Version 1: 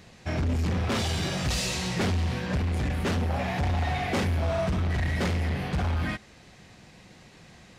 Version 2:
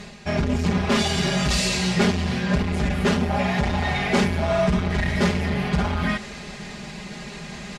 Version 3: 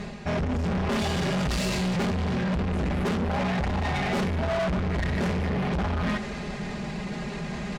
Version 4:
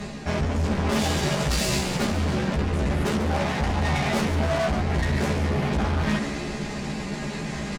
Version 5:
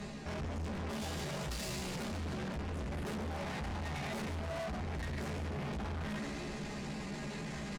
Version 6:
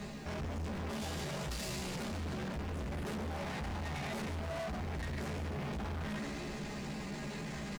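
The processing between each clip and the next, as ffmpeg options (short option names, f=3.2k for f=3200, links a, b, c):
-af "lowpass=9.9k,aecho=1:1:4.9:0.89,areverse,acompressor=mode=upward:threshold=-30dB:ratio=2.5,areverse,volume=4.5dB"
-af "highshelf=f=2.2k:g=-11,asoftclip=type=tanh:threshold=-29.5dB,volume=5.5dB"
-filter_complex "[0:a]acrossover=split=140|5200[a][b][c];[c]acontrast=79[d];[a][b][d]amix=inputs=3:normalize=0,asplit=2[e][f];[f]adelay=14,volume=-2.5dB[g];[e][g]amix=inputs=2:normalize=0,asplit=6[h][i][j][k][l][m];[i]adelay=141,afreqshift=72,volume=-10.5dB[n];[j]adelay=282,afreqshift=144,volume=-16.5dB[o];[k]adelay=423,afreqshift=216,volume=-22.5dB[p];[l]adelay=564,afreqshift=288,volume=-28.6dB[q];[m]adelay=705,afreqshift=360,volume=-34.6dB[r];[h][n][o][p][q][r]amix=inputs=6:normalize=0"
-af "alimiter=limit=-17dB:level=0:latency=1:release=25,asoftclip=type=tanh:threshold=-27dB,volume=-8.5dB"
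-af "acrusher=bits=10:mix=0:aa=0.000001"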